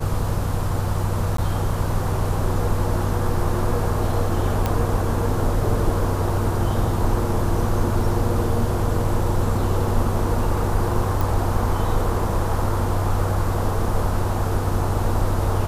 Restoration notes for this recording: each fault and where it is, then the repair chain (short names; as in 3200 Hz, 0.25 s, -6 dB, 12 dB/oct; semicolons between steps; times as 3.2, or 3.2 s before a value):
1.37–1.38 gap 13 ms
4.66 pop -8 dBFS
11.21 pop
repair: de-click; interpolate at 1.37, 13 ms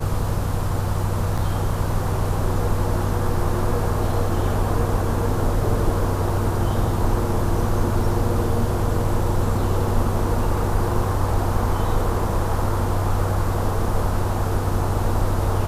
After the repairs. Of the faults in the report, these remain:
none